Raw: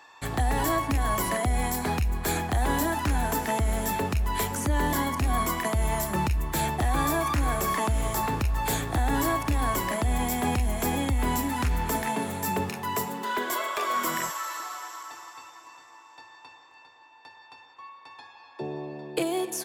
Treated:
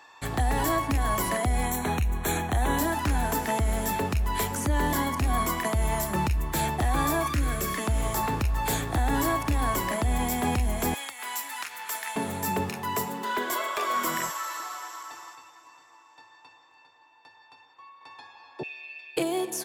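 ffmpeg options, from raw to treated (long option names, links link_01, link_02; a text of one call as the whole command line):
ffmpeg -i in.wav -filter_complex "[0:a]asettb=1/sr,asplit=3[link_01][link_02][link_03];[link_01]atrim=end=1.654[link_04];[link_02]atrim=start=1.65:end=2.78,asetpts=PTS-STARTPTS,afade=type=in:duration=0.004:curve=qsin,afade=type=out:start_time=1.126:duration=0.004:curve=qsin,asuperstop=centerf=4900:order=8:qfactor=3.8[link_05];[link_03]atrim=start=2.776[link_06];[link_04][link_05]acrossfade=duration=0.004:curve1=hsin:curve2=qsin[link_07];[link_07][link_06]acrossfade=duration=0.004:curve1=qsin:curve2=hsin,asettb=1/sr,asplit=3[link_08][link_09][link_10];[link_08]atrim=end=7.274[link_11];[link_09]atrim=start=7.27:end=7.87,asetpts=PTS-STARTPTS,afade=type=in:duration=0.004:curve=qsin,afade=type=out:start_time=0.596:duration=0.004:curve=qsin,equalizer=frequency=850:width_type=o:width=0.63:gain=-14[link_12];[link_10]atrim=start=7.866[link_13];[link_11][link_12]acrossfade=duration=0.004:curve1=hsin:curve2=qsin[link_14];[link_14][link_13]acrossfade=duration=0.004:curve1=qsin:curve2=hsin,asettb=1/sr,asplit=3[link_15][link_16][link_17];[link_15]atrim=end=10.944[link_18];[link_16]atrim=start=10.94:end=12.16,asetpts=PTS-STARTPTS,afade=type=in:duration=0.004:curve=qsin,afade=type=out:start_time=1.216:duration=0.004:curve=qsin,highpass=1300[link_19];[link_17]atrim=start=12.156[link_20];[link_18][link_19]acrossfade=duration=0.004:curve1=hsin:curve2=qsin[link_21];[link_21][link_20]acrossfade=duration=0.004:curve1=qsin:curve2=hsin,asettb=1/sr,asplit=3[link_22][link_23][link_24];[link_22]atrim=end=15.354[link_25];[link_23]atrim=start=15.35:end=18.01,asetpts=PTS-STARTPTS,afade=type=in:duration=0.004:curve=qsin,afade=type=out:start_time=2.656:duration=0.004:curve=qsin,flanger=delay=5.9:depth=1.2:regen=-68:speed=1.6:shape=triangular[link_26];[link_24]atrim=start=18.006[link_27];[link_25][link_26]acrossfade=duration=0.004:curve1=hsin:curve2=qsin[link_28];[link_28][link_27]acrossfade=duration=0.004:curve1=qsin:curve2=hsin,asettb=1/sr,asplit=3[link_29][link_30][link_31];[link_29]atrim=end=18.634[link_32];[link_30]atrim=start=18.63:end=19.17,asetpts=PTS-STARTPTS,afade=type=in:duration=0.004:curve=qsin,afade=type=out:start_time=0.536:duration=0.004:curve=qsin,highpass=frequency=2500:width_type=q:width=12[link_33];[link_31]atrim=start=19.166[link_34];[link_32][link_33]acrossfade=duration=0.004:curve1=hsin:curve2=qsin[link_35];[link_35][link_34]acrossfade=duration=0.004:curve1=qsin:curve2=hsin" out.wav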